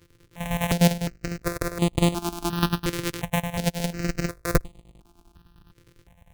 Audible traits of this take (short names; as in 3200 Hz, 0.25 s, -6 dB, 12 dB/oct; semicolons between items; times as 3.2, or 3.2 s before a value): a buzz of ramps at a fixed pitch in blocks of 256 samples; chopped level 9.9 Hz, depth 65%, duty 65%; notches that jump at a steady rate 2.8 Hz 200–5500 Hz